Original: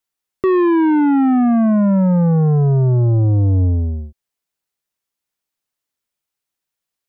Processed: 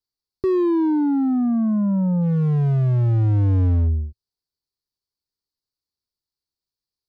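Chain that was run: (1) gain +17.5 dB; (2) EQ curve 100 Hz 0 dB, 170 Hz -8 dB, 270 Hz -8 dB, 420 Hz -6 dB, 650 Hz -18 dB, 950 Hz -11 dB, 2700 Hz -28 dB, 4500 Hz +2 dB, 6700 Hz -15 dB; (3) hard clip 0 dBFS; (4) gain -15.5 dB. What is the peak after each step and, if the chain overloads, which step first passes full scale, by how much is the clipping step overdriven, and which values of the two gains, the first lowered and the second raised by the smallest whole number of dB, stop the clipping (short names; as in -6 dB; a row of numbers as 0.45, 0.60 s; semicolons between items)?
+5.5, +7.5, 0.0, -15.5 dBFS; step 1, 7.5 dB; step 1 +9.5 dB, step 4 -7.5 dB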